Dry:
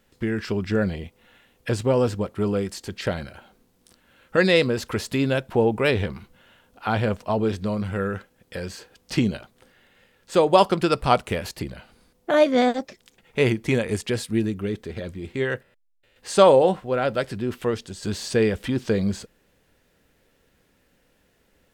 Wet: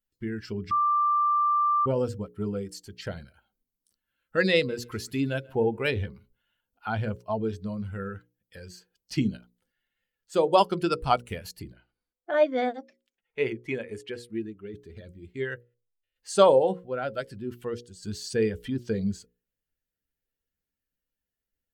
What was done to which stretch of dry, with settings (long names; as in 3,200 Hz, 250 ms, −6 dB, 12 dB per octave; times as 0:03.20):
0:00.71–0:01.86: beep over 1,180 Hz −18 dBFS
0:04.55–0:05.94: repeating echo 136 ms, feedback 34%, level −17.5 dB
0:11.73–0:14.74: bass and treble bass −8 dB, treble −9 dB
whole clip: spectral dynamics exaggerated over time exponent 1.5; mains-hum notches 60/120/180/240/300/360/420/480/540 Hz; level −2 dB